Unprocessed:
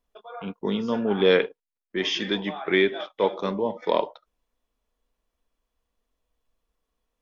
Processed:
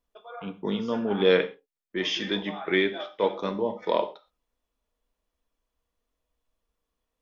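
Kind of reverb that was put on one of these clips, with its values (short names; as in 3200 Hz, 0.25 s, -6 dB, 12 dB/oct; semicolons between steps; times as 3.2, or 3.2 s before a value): non-linear reverb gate 0.15 s falling, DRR 8.5 dB; gain -2.5 dB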